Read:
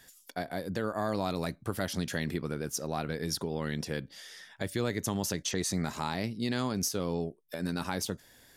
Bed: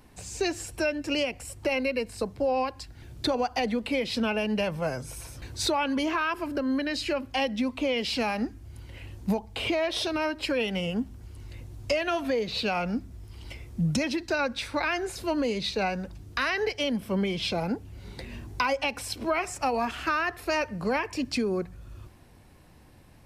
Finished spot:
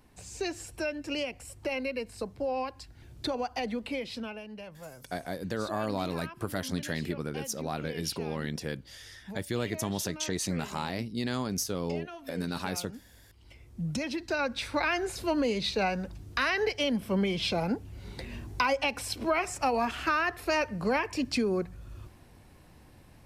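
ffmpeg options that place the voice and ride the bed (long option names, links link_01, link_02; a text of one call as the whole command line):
ffmpeg -i stem1.wav -i stem2.wav -filter_complex "[0:a]adelay=4750,volume=-0.5dB[link_01];[1:a]volume=10.5dB,afade=type=out:start_time=3.86:duration=0.59:silence=0.281838,afade=type=in:start_time=13.35:duration=1.43:silence=0.158489[link_02];[link_01][link_02]amix=inputs=2:normalize=0" out.wav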